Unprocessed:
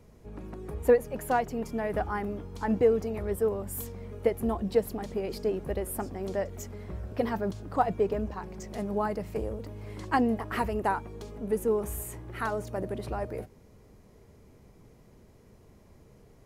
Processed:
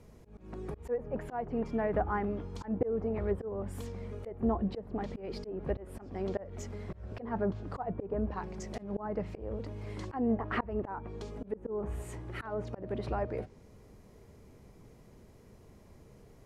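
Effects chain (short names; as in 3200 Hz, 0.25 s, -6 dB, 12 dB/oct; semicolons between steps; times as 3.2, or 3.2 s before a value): treble ducked by the level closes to 1300 Hz, closed at -25.5 dBFS; auto swell 0.207 s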